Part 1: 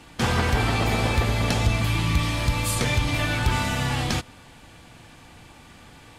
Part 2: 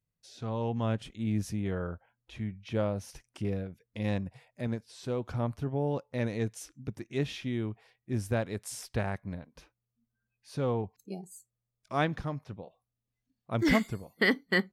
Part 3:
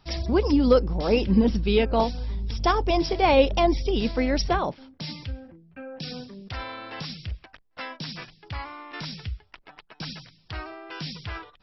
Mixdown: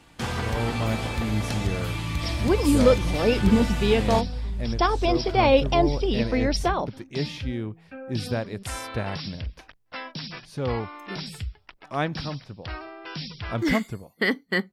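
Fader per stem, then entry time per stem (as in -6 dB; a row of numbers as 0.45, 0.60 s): -6.5, +2.0, 0.0 dB; 0.00, 0.00, 2.15 s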